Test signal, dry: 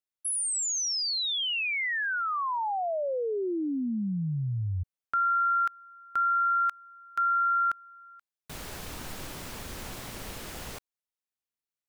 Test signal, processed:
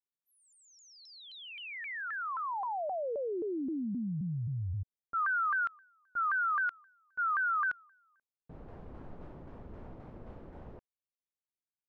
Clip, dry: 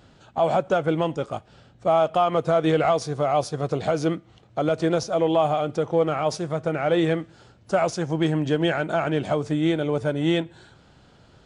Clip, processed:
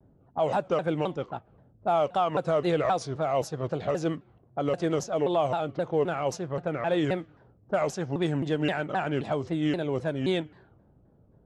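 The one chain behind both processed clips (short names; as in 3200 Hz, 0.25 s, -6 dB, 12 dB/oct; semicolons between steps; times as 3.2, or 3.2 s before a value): low-pass opened by the level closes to 470 Hz, open at -18 dBFS; shaped vibrato saw down 3.8 Hz, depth 250 cents; gain -5 dB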